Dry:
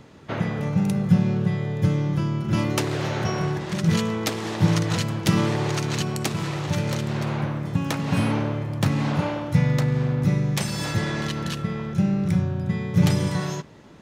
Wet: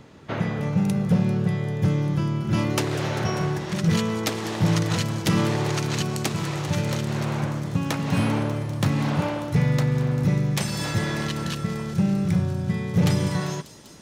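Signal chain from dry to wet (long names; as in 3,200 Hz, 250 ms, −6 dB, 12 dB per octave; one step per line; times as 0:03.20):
gain into a clipping stage and back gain 14 dB
on a send: delay with a high-pass on its return 197 ms, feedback 84%, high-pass 4,700 Hz, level −12 dB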